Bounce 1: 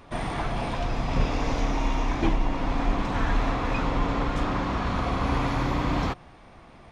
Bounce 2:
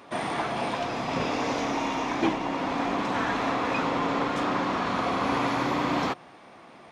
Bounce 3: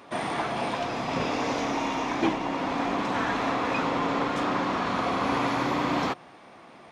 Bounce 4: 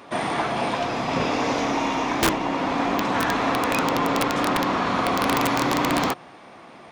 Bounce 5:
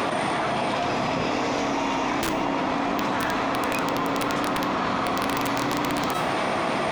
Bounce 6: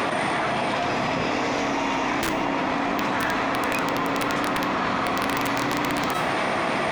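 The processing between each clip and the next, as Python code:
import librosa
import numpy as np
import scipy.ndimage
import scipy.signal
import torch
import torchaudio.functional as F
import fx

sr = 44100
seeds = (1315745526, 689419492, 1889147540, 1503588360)

y1 = scipy.signal.sosfilt(scipy.signal.butter(2, 230.0, 'highpass', fs=sr, output='sos'), x)
y1 = F.gain(torch.from_numpy(y1), 2.5).numpy()
y2 = y1
y3 = (np.mod(10.0 ** (16.5 / 20.0) * y2 + 1.0, 2.0) - 1.0) / 10.0 ** (16.5 / 20.0)
y3 = F.gain(torch.from_numpy(y3), 4.5).numpy()
y4 = fx.comb_fb(y3, sr, f0_hz=650.0, decay_s=0.4, harmonics='all', damping=0.0, mix_pct=60)
y4 = fx.env_flatten(y4, sr, amount_pct=100)
y5 = fx.rattle_buzz(y4, sr, strikes_db=-33.0, level_db=-32.0)
y5 = fx.peak_eq(y5, sr, hz=1900.0, db=4.0, octaves=0.72)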